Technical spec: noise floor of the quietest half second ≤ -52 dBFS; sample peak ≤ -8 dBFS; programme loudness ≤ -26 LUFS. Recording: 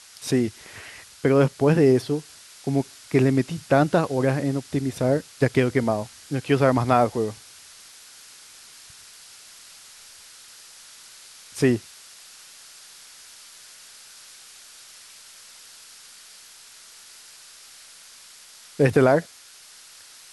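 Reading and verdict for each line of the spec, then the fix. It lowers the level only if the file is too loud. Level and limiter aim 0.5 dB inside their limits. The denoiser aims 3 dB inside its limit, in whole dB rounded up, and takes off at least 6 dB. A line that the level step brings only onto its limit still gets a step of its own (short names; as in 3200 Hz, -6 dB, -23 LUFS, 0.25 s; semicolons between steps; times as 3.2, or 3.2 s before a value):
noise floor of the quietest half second -48 dBFS: fail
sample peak -4.5 dBFS: fail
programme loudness -22.5 LUFS: fail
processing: denoiser 6 dB, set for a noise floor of -48 dBFS; gain -4 dB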